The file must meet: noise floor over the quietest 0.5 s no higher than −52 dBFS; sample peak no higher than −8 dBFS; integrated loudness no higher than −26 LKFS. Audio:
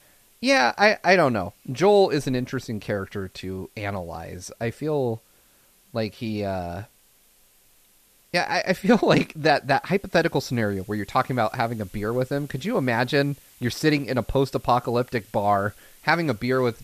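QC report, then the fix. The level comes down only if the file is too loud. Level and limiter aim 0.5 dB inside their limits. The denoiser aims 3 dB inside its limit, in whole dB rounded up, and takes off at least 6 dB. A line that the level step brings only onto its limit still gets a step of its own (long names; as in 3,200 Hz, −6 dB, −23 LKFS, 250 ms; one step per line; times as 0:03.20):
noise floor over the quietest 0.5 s −59 dBFS: in spec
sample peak −5.0 dBFS: out of spec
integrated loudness −23.5 LKFS: out of spec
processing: level −3 dB
brickwall limiter −8.5 dBFS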